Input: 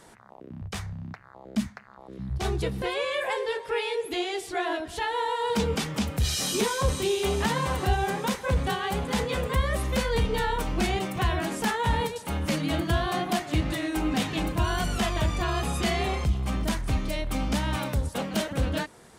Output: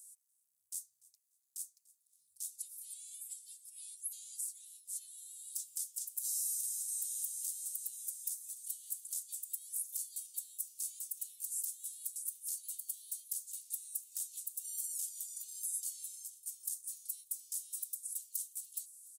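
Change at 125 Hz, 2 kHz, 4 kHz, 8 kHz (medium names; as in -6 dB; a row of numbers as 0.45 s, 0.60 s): under -40 dB, under -40 dB, -23.5 dB, +0.5 dB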